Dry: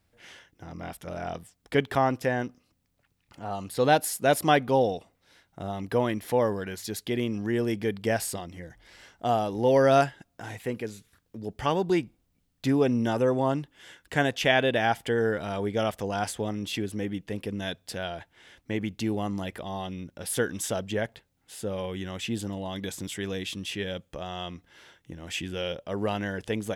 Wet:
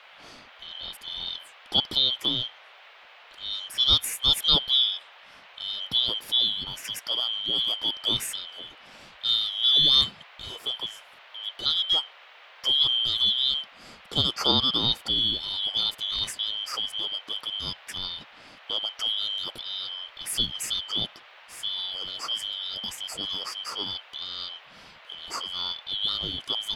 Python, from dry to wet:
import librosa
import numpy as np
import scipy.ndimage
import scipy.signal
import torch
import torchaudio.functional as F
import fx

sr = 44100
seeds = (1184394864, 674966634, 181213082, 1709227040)

y = fx.band_shuffle(x, sr, order='2413')
y = fx.dmg_noise_band(y, sr, seeds[0], low_hz=540.0, high_hz=3300.0, level_db=-51.0)